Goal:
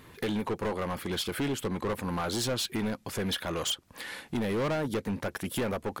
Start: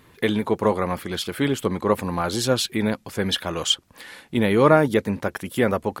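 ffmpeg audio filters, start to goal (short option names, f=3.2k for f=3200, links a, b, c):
-af "acompressor=threshold=-30dB:ratio=2,asoftclip=type=hard:threshold=-27.5dB,volume=1dB"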